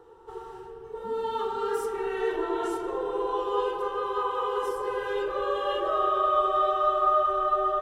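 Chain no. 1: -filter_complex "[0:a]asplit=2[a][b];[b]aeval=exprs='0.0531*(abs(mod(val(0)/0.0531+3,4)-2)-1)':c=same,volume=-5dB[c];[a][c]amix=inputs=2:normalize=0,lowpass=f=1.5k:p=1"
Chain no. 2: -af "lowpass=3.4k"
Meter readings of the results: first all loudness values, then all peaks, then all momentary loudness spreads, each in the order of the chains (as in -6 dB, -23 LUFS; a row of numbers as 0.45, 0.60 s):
-26.5, -27.0 LUFS; -13.5, -12.5 dBFS; 10, 14 LU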